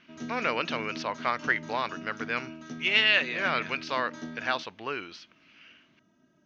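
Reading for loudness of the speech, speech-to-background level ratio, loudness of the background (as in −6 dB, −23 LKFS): −28.5 LKFS, 13.5 dB, −42.0 LKFS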